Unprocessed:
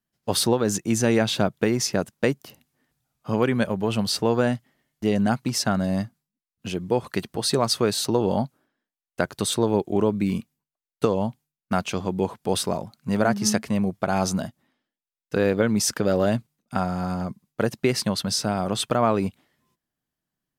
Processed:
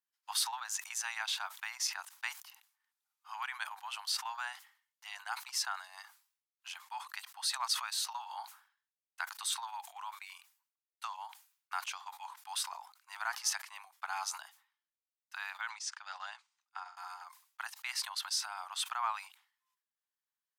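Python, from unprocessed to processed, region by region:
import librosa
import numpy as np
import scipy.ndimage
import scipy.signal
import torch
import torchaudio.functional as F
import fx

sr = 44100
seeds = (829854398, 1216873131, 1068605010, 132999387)

y = fx.chain(x, sr, fx.lowpass(hz=7400.0, slope=24),
    fx.low_shelf(hz=160.0, db=-7.0),
    fx.upward_expand(threshold_db=-36.0, expansion=2.5), at=(15.69, 16.97))
y = scipy.signal.sosfilt(scipy.signal.butter(12, 830.0, 'highpass', fs=sr, output='sos'), y)
y = fx.transient(y, sr, attack_db=-1, sustain_db=-6)
y = fx.sustainer(y, sr, db_per_s=120.0)
y = y * librosa.db_to_amplitude(-8.0)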